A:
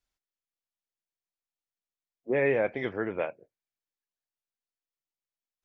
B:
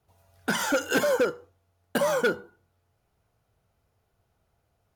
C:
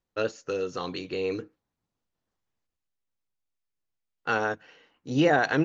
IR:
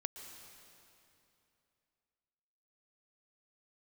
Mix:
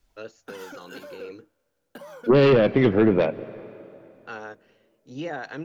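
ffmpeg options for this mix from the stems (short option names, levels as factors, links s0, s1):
-filter_complex "[0:a]lowshelf=f=490:g=12,aeval=exprs='0.376*sin(PI/2*2.24*val(0)/0.376)':c=same,volume=0.841,asplit=2[s0][s1];[s1]volume=0.299[s2];[1:a]equalizer=f=7800:w=1.5:g=-7,acompressor=threshold=0.0447:ratio=6,volume=0.224,asplit=2[s3][s4];[s4]volume=0.0944[s5];[2:a]volume=0.282[s6];[3:a]atrim=start_sample=2205[s7];[s2][s5]amix=inputs=2:normalize=0[s8];[s8][s7]afir=irnorm=-1:irlink=0[s9];[s0][s3][s6][s9]amix=inputs=4:normalize=0,acrossover=split=350|3000[s10][s11][s12];[s11]acompressor=threshold=0.0562:ratio=2[s13];[s10][s13][s12]amix=inputs=3:normalize=0,equalizer=f=84:t=o:w=0.31:g=-13.5"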